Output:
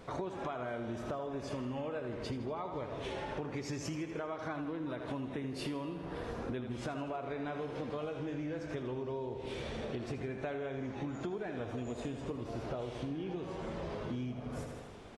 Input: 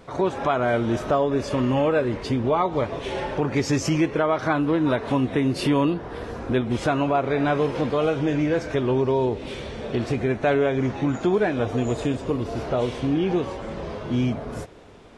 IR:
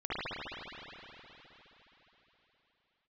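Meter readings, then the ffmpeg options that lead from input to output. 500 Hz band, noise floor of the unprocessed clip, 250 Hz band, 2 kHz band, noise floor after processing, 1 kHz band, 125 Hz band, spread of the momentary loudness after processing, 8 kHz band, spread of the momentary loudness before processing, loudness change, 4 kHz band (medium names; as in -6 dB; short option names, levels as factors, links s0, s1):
-16.5 dB, -36 dBFS, -16.0 dB, -16.0 dB, -45 dBFS, -16.5 dB, -15.5 dB, 2 LU, -14.0 dB, 8 LU, -16.0 dB, -14.0 dB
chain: -af "aecho=1:1:80|160|240|320|400|480|560:0.355|0.206|0.119|0.0692|0.0402|0.0233|0.0135,acompressor=threshold=0.0251:ratio=10,volume=0.631"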